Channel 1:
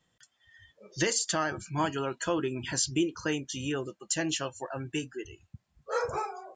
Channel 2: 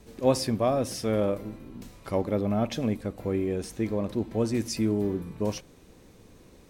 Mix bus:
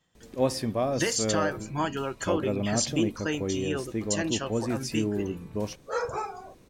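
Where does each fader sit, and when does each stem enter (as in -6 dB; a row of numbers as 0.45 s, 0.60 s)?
+0.5 dB, -2.5 dB; 0.00 s, 0.15 s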